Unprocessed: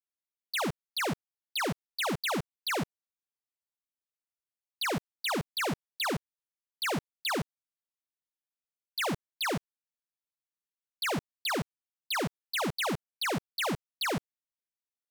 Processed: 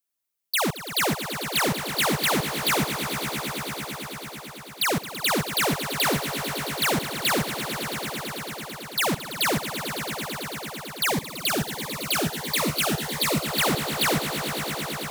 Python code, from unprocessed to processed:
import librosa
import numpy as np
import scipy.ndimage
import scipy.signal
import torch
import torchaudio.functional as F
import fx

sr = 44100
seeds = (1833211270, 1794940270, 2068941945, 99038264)

y = fx.high_shelf(x, sr, hz=7500.0, db=9.5)
y = fx.echo_swell(y, sr, ms=111, loudest=5, wet_db=-12.0)
y = fx.notch_cascade(y, sr, direction='rising', hz=1.5, at=(11.11, 13.44), fade=0.02)
y = y * librosa.db_to_amplitude(6.0)